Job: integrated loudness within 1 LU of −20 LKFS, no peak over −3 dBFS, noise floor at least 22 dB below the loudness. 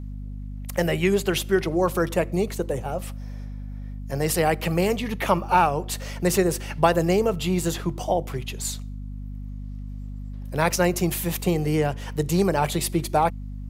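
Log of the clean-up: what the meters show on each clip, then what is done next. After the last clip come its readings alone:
mains hum 50 Hz; hum harmonics up to 250 Hz; level of the hum −31 dBFS; integrated loudness −24.0 LKFS; sample peak −3.5 dBFS; target loudness −20.0 LKFS
→ mains-hum notches 50/100/150/200/250 Hz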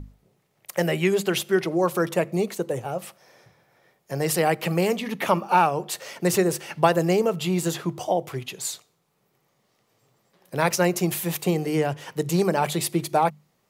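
mains hum none found; integrated loudness −24.5 LKFS; sample peak −3.0 dBFS; target loudness −20.0 LKFS
→ level +4.5 dB
brickwall limiter −3 dBFS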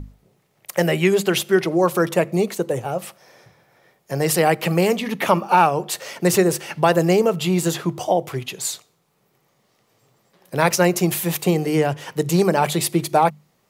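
integrated loudness −20.0 LKFS; sample peak −3.0 dBFS; background noise floor −65 dBFS

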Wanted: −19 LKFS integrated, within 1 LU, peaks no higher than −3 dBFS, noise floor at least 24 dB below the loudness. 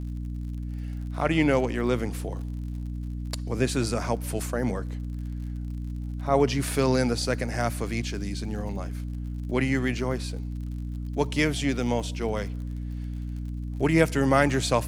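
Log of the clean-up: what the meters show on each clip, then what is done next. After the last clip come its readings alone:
crackle rate 53 per second; mains hum 60 Hz; hum harmonics up to 300 Hz; level of the hum −30 dBFS; integrated loudness −28.0 LKFS; sample peak −6.0 dBFS; target loudness −19.0 LKFS
→ click removal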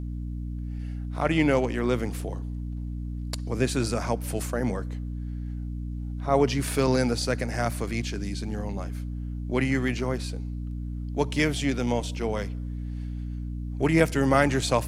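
crackle rate 0.20 per second; mains hum 60 Hz; hum harmonics up to 300 Hz; level of the hum −30 dBFS
→ hum removal 60 Hz, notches 5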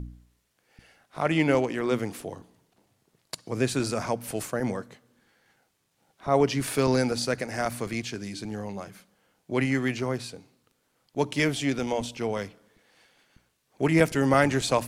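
mains hum none found; integrated loudness −27.0 LKFS; sample peak −6.5 dBFS; target loudness −19.0 LKFS
→ level +8 dB
brickwall limiter −3 dBFS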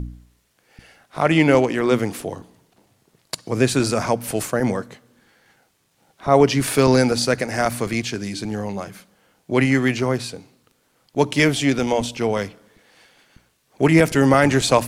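integrated loudness −19.5 LKFS; sample peak −3.0 dBFS; background noise floor −65 dBFS

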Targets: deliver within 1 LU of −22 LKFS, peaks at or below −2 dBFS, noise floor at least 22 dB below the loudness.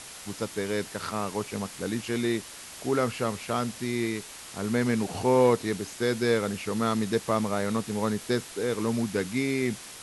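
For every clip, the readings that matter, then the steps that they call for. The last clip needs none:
background noise floor −44 dBFS; target noise floor −51 dBFS; integrated loudness −28.5 LKFS; sample peak −10.0 dBFS; target loudness −22.0 LKFS
→ noise reduction from a noise print 7 dB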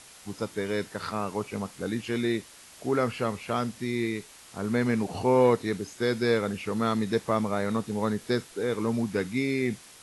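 background noise floor −51 dBFS; integrated loudness −28.5 LKFS; sample peak −10.0 dBFS; target loudness −22.0 LKFS
→ level +6.5 dB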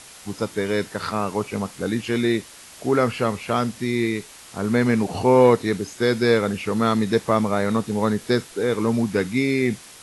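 integrated loudness −22.0 LKFS; sample peak −3.5 dBFS; background noise floor −44 dBFS

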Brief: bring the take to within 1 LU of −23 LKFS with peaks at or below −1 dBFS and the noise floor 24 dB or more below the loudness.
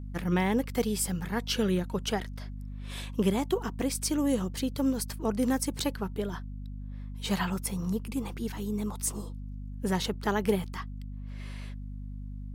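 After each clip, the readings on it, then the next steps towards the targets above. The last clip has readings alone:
mains hum 50 Hz; hum harmonics up to 250 Hz; level of the hum −37 dBFS; integrated loudness −31.0 LKFS; sample peak −13.5 dBFS; target loudness −23.0 LKFS
→ mains-hum notches 50/100/150/200/250 Hz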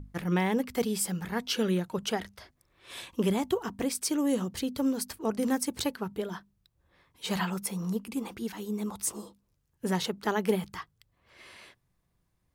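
mains hum none found; integrated loudness −31.0 LKFS; sample peak −14.5 dBFS; target loudness −23.0 LKFS
→ level +8 dB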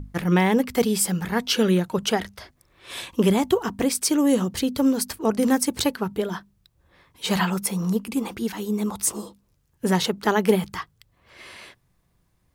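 integrated loudness −23.0 LKFS; sample peak −6.5 dBFS; background noise floor −67 dBFS

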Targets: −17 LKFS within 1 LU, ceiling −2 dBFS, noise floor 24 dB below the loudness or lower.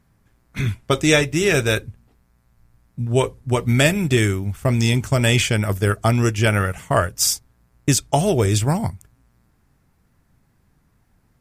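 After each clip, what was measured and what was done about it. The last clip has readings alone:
number of dropouts 1; longest dropout 1.5 ms; integrated loudness −19.5 LKFS; sample peak −1.5 dBFS; target loudness −17.0 LKFS
→ repair the gap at 0:07.19, 1.5 ms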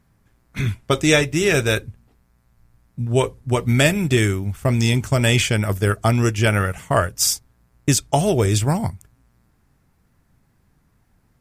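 number of dropouts 0; integrated loudness −19.5 LKFS; sample peak −1.5 dBFS; target loudness −17.0 LKFS
→ level +2.5 dB
brickwall limiter −2 dBFS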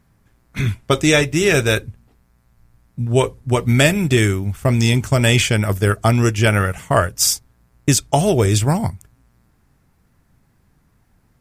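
integrated loudness −17.0 LKFS; sample peak −2.0 dBFS; background noise floor −60 dBFS

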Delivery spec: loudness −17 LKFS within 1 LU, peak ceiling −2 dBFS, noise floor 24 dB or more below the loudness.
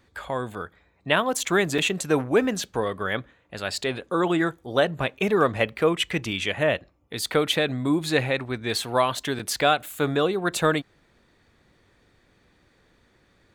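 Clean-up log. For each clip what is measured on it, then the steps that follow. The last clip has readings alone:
number of dropouts 2; longest dropout 5.0 ms; integrated loudness −24.5 LKFS; sample peak −5.0 dBFS; target loudness −17.0 LKFS
→ repair the gap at 0:01.78/0:09.39, 5 ms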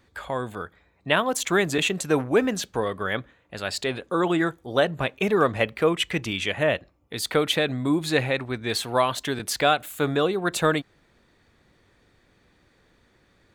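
number of dropouts 0; integrated loudness −24.5 LKFS; sample peak −5.0 dBFS; target loudness −17.0 LKFS
→ level +7.5 dB
brickwall limiter −2 dBFS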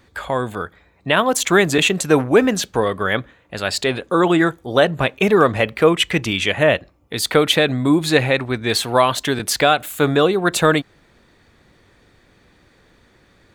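integrated loudness −17.5 LKFS; sample peak −2.0 dBFS; background noise floor −55 dBFS

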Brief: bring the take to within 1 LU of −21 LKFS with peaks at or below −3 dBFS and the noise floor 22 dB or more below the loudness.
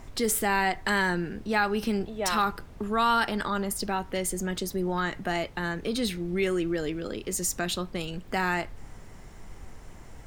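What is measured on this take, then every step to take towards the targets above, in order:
background noise floor −46 dBFS; target noise floor −51 dBFS; integrated loudness −28.5 LKFS; sample peak −11.5 dBFS; target loudness −21.0 LKFS
→ noise reduction from a noise print 6 dB
level +7.5 dB

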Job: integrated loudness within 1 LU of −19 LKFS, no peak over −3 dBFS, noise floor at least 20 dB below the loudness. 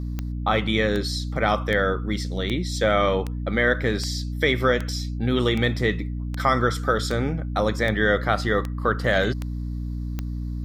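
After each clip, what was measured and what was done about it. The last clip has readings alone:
number of clicks 14; mains hum 60 Hz; hum harmonics up to 300 Hz; level of the hum −26 dBFS; integrated loudness −23.5 LKFS; sample peak −5.5 dBFS; target loudness −19.0 LKFS
→ click removal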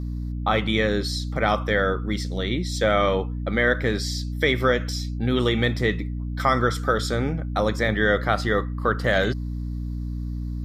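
number of clicks 0; mains hum 60 Hz; hum harmonics up to 300 Hz; level of the hum −26 dBFS
→ mains-hum notches 60/120/180/240/300 Hz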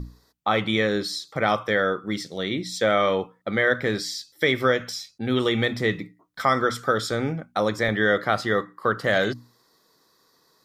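mains hum none found; integrated loudness −24.0 LKFS; sample peak −6.5 dBFS; target loudness −19.0 LKFS
→ level +5 dB
brickwall limiter −3 dBFS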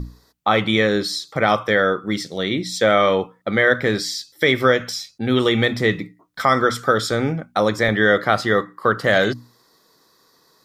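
integrated loudness −19.0 LKFS; sample peak −3.0 dBFS; background noise floor −59 dBFS

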